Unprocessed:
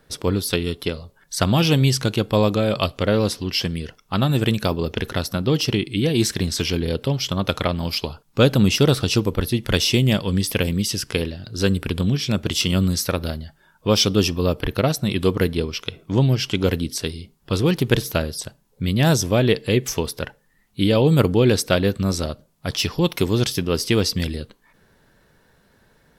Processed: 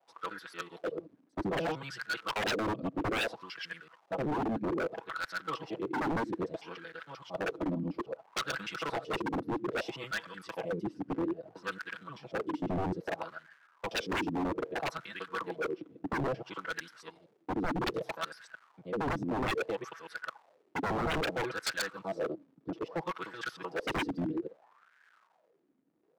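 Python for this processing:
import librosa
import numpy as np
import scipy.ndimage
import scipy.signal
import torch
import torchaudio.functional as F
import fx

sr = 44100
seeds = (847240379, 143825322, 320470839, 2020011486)

y = fx.local_reverse(x, sr, ms=76.0)
y = scipy.signal.sosfilt(scipy.signal.butter(2, 82.0, 'highpass', fs=sr, output='sos'), y)
y = fx.high_shelf(y, sr, hz=2700.0, db=-3.0)
y = y + 0.69 * np.pad(y, (int(6.1 * sr / 1000.0), 0))[:len(y)]
y = fx.dmg_crackle(y, sr, seeds[0], per_s=460.0, level_db=-31.0)
y = fx.wah_lfo(y, sr, hz=0.61, low_hz=260.0, high_hz=1600.0, q=6.7)
y = 10.0 ** (-31.0 / 20.0) * (np.abs((y / 10.0 ** (-31.0 / 20.0) + 3.0) % 4.0 - 2.0) - 1.0)
y = fx.band_widen(y, sr, depth_pct=40)
y = y * librosa.db_to_amplitude(4.0)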